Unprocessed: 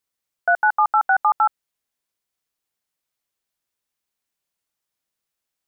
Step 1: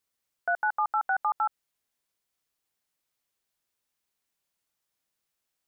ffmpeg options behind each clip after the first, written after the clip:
-af "alimiter=limit=0.112:level=0:latency=1:release=54"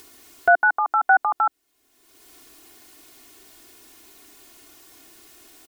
-filter_complex "[0:a]equalizer=f=300:t=o:w=1.2:g=10.5,aecho=1:1:2.8:0.86,asplit=2[s0][s1];[s1]acompressor=mode=upward:threshold=0.0447:ratio=2.5,volume=1.06[s2];[s0][s2]amix=inputs=2:normalize=0"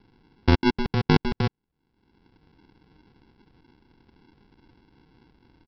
-af "aeval=exprs='0.501*(cos(1*acos(clip(val(0)/0.501,-1,1)))-cos(1*PI/2))+0.141*(cos(2*acos(clip(val(0)/0.501,-1,1)))-cos(2*PI/2))':c=same,aresample=11025,acrusher=samples=18:mix=1:aa=0.000001,aresample=44100,volume=0.668"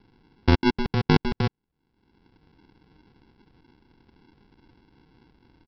-af anull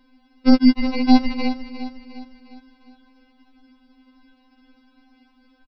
-filter_complex "[0:a]asplit=2[s0][s1];[s1]aecho=0:1:355|710|1065|1420|1775:0.251|0.116|0.0532|0.0244|0.0112[s2];[s0][s2]amix=inputs=2:normalize=0,afftfilt=real='re*3.46*eq(mod(b,12),0)':imag='im*3.46*eq(mod(b,12),0)':win_size=2048:overlap=0.75,volume=1.88"

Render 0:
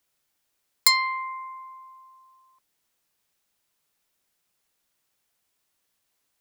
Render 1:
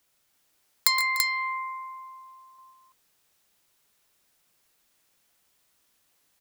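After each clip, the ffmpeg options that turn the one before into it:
-af "acompressor=threshold=0.0501:ratio=3,aecho=1:1:118|141|295|335:0.282|0.224|0.141|0.631,volume=1.68"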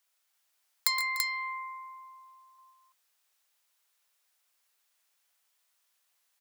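-af "highpass=730,volume=0.531"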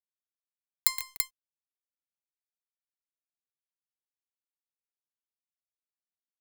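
-af "aemphasis=mode=production:type=cd,aeval=exprs='sgn(val(0))*max(abs(val(0))-0.0422,0)':c=same,volume=0.794"

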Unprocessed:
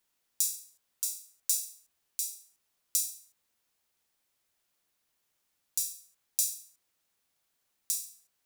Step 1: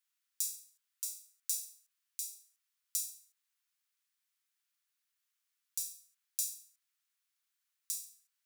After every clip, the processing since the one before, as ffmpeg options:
-af "highpass=f=1200:w=0.5412,highpass=f=1200:w=1.3066,volume=0.473"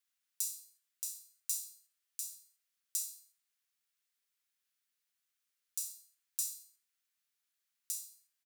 -af "aecho=1:1:61|122|183|244:0.188|0.0753|0.0301|0.0121,afreqshift=110,volume=0.891"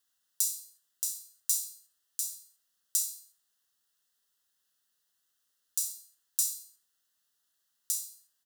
-af "asuperstop=centerf=2300:order=4:qfactor=2.8,volume=2.37"

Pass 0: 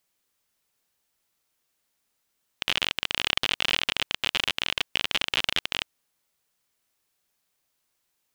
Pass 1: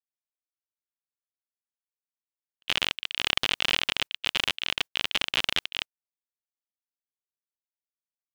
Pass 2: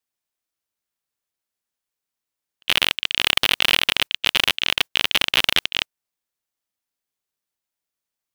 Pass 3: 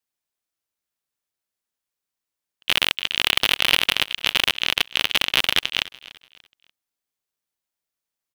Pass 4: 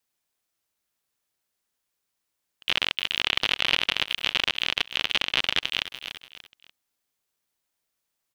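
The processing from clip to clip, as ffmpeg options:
-af "agate=range=0.01:threshold=0.0282:ratio=16:detection=peak"
-af "aeval=exprs='0.794*(cos(1*acos(clip(val(0)/0.794,-1,1)))-cos(1*PI/2))+0.126*(cos(4*acos(clip(val(0)/0.794,-1,1)))-cos(4*PI/2))+0.112*(cos(6*acos(clip(val(0)/0.794,-1,1)))-cos(6*PI/2))+0.02*(cos(8*acos(clip(val(0)/0.794,-1,1)))-cos(8*PI/2))':c=same,apsyclip=3.76,volume=0.841"
-af "aecho=1:1:292|584|876:0.112|0.037|0.0122,volume=0.891"
-filter_complex "[0:a]acrossover=split=6700[s0][s1];[s1]acompressor=threshold=0.00891:ratio=4:attack=1:release=60[s2];[s0][s2]amix=inputs=2:normalize=0,alimiter=limit=0.237:level=0:latency=1:release=145,volume=1.88"

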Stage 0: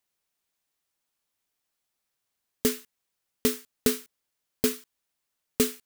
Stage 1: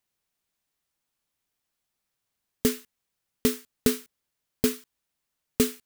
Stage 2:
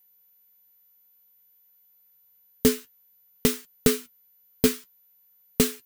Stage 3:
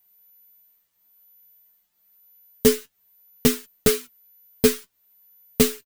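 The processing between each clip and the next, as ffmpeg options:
-af "bass=f=250:g=5,treble=f=4000:g=-1"
-af "flanger=delay=5.5:depth=5.9:regen=46:speed=0.55:shape=sinusoidal,aeval=exprs='val(0)+0.000501*sin(2*PI*14000*n/s)':c=same,volume=2.37"
-filter_complex "[0:a]asplit=2[s0][s1];[s1]adelay=7.6,afreqshift=-1[s2];[s0][s2]amix=inputs=2:normalize=1,volume=2"

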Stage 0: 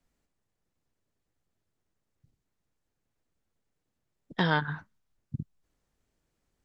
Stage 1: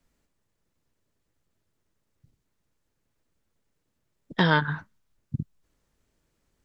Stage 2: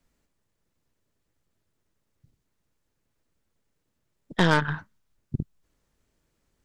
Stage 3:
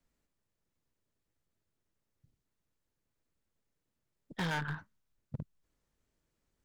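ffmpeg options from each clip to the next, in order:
-af "bandreject=f=750:w=12,volume=1.78"
-af "aeval=exprs='0.531*(cos(1*acos(clip(val(0)/0.531,-1,1)))-cos(1*PI/2))+0.0473*(cos(8*acos(clip(val(0)/0.531,-1,1)))-cos(8*PI/2))':c=same"
-af "asoftclip=type=hard:threshold=0.0841,volume=0.398"

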